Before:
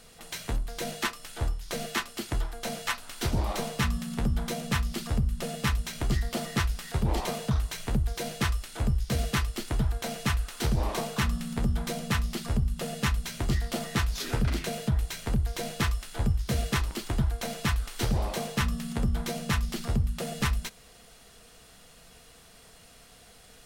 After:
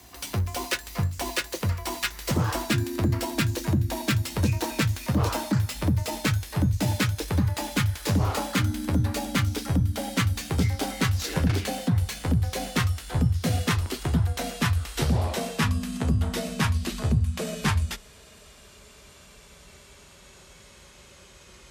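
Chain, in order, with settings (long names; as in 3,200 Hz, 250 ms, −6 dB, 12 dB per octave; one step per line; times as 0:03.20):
gliding playback speed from 145% → 73%
frequency shifter +34 Hz
level +3 dB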